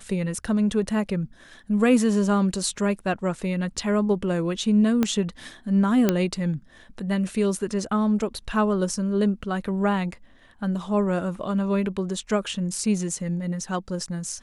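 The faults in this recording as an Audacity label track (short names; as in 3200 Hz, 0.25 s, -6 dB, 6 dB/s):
5.030000	5.030000	pop -9 dBFS
6.090000	6.090000	pop -6 dBFS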